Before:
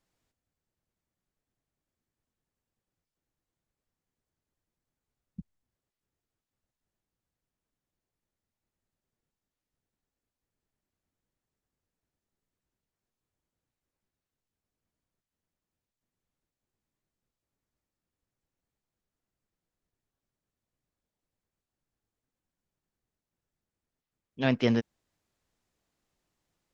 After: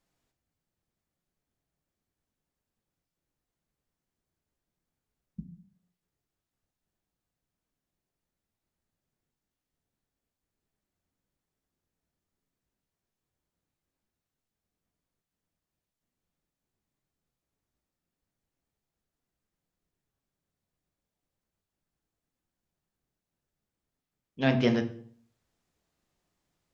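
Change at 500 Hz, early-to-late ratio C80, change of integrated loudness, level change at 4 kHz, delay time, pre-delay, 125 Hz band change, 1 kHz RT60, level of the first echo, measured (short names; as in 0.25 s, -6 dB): +1.0 dB, 15.5 dB, +0.5 dB, +0.5 dB, none, 3 ms, +1.5 dB, 0.55 s, none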